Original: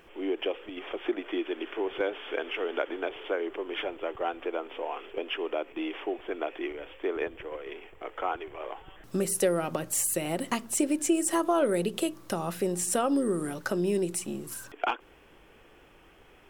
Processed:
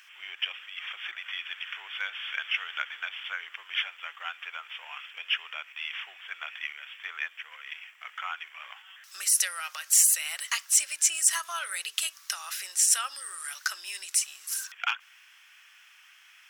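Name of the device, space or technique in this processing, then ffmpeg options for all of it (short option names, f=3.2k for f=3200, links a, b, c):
headphones lying on a table: -af "highpass=f=1.5k:w=0.5412,highpass=f=1.5k:w=1.3066,equalizer=f=5.7k:t=o:w=0.59:g=7.5,volume=6.5dB"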